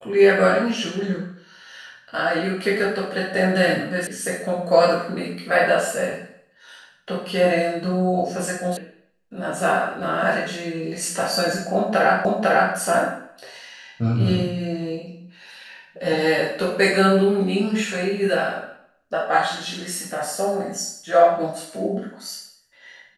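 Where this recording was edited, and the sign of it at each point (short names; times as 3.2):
4.07 sound cut off
8.77 sound cut off
12.25 repeat of the last 0.5 s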